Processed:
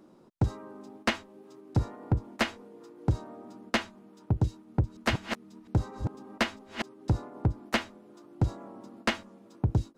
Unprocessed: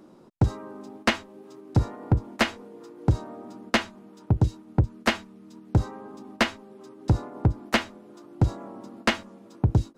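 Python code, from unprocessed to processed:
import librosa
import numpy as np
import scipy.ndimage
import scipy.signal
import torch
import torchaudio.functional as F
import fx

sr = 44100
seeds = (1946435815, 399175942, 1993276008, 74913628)

y = fx.reverse_delay(x, sr, ms=235, wet_db=-6, at=(4.5, 6.82))
y = y * librosa.db_to_amplitude(-5.0)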